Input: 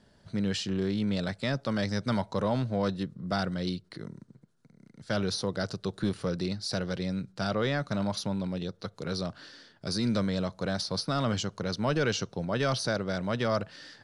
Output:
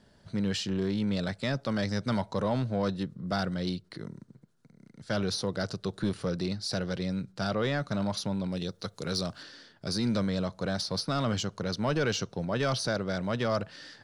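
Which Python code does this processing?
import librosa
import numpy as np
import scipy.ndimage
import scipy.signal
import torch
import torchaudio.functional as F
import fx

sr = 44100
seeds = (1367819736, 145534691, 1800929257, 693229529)

p1 = fx.high_shelf(x, sr, hz=4800.0, db=11.0, at=(8.52, 9.43))
p2 = 10.0 ** (-26.5 / 20.0) * np.tanh(p1 / 10.0 ** (-26.5 / 20.0))
p3 = p1 + F.gain(torch.from_numpy(p2), -5.5).numpy()
y = F.gain(torch.from_numpy(p3), -3.0).numpy()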